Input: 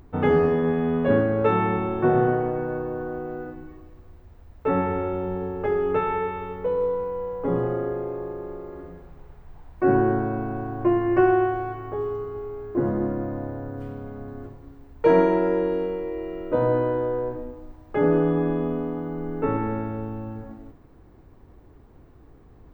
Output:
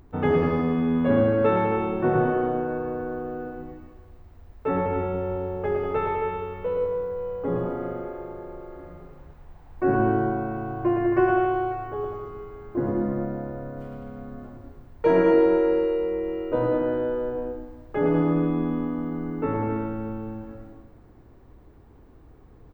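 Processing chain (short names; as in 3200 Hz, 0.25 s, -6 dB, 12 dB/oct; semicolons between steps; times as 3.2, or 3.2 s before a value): bouncing-ball echo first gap 0.11 s, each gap 0.8×, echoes 5; gain -2.5 dB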